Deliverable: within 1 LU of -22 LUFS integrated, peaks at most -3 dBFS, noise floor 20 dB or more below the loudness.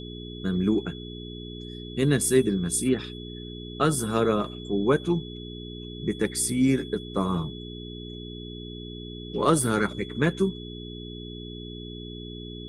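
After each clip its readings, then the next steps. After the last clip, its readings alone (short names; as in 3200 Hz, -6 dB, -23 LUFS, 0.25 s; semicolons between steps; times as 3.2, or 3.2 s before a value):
hum 60 Hz; harmonics up to 420 Hz; hum level -37 dBFS; steady tone 3400 Hz; tone level -43 dBFS; loudness -25.5 LUFS; peak -7.5 dBFS; loudness target -22.0 LUFS
-> de-hum 60 Hz, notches 7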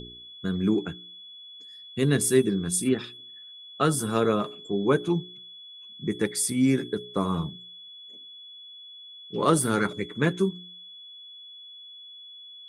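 hum none; steady tone 3400 Hz; tone level -43 dBFS
-> notch 3400 Hz, Q 30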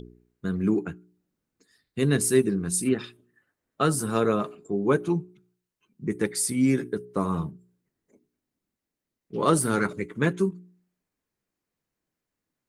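steady tone none; loudness -26.0 LUFS; peak -7.5 dBFS; loudness target -22.0 LUFS
-> gain +4 dB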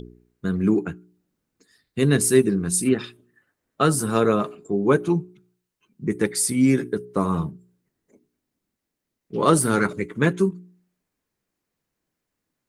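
loudness -22.0 LUFS; peak -3.5 dBFS; noise floor -82 dBFS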